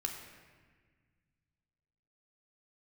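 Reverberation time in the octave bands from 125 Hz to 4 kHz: 2.9 s, 2.4 s, 1.6 s, 1.4 s, 1.7 s, 1.2 s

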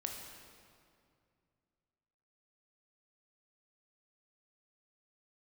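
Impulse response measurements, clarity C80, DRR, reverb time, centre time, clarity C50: 4.5 dB, 1.5 dB, 2.3 s, 69 ms, 3.5 dB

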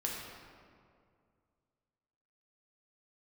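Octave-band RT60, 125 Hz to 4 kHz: 2.7 s, 2.5 s, 2.4 s, 2.1 s, 1.7 s, 1.2 s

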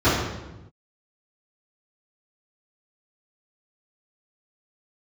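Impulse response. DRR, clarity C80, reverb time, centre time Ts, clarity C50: -14.5 dB, 4.0 dB, 1.0 s, 69 ms, 1.0 dB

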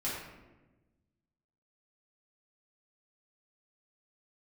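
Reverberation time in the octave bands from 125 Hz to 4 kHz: 1.8 s, 1.7 s, 1.3 s, 1.0 s, 0.95 s, 0.65 s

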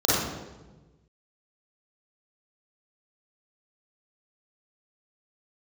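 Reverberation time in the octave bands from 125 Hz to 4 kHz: 1.8 s, 1.5 s, 1.3 s, 1.1 s, 0.90 s, 0.85 s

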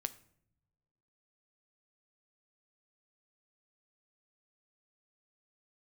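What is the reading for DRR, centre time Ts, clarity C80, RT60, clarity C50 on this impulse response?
12.0 dB, 4 ms, 20.5 dB, no single decay rate, 17.5 dB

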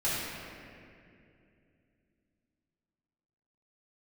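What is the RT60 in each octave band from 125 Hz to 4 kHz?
3.6 s, 3.7 s, 3.0 s, 2.1 s, 2.4 s, 1.6 s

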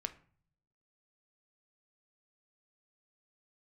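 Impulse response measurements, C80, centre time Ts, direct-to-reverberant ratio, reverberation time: 20.0 dB, 5 ms, 8.5 dB, 0.50 s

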